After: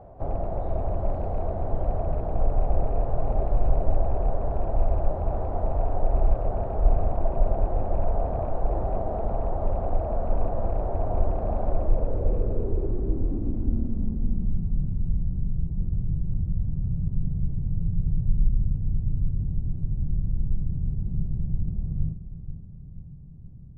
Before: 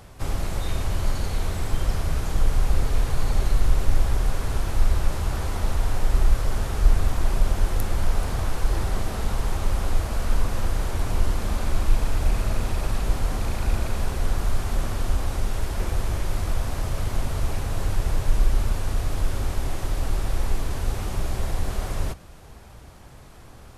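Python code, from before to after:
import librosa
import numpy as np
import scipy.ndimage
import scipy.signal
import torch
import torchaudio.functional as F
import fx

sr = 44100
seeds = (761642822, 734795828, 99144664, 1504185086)

p1 = fx.rattle_buzz(x, sr, strikes_db=-21.0, level_db=-24.0)
p2 = p1 + fx.echo_feedback(p1, sr, ms=480, feedback_pct=53, wet_db=-12.0, dry=0)
p3 = fx.filter_sweep_lowpass(p2, sr, from_hz=670.0, to_hz=160.0, start_s=11.64, end_s=14.87, q=4.4)
y = p3 * 10.0 ** (-3.0 / 20.0)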